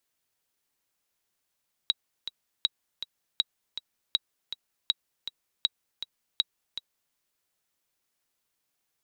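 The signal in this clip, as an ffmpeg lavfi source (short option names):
-f lavfi -i "aevalsrc='pow(10,(-10-11.5*gte(mod(t,2*60/160),60/160))/20)*sin(2*PI*3850*mod(t,60/160))*exp(-6.91*mod(t,60/160)/0.03)':d=5.25:s=44100"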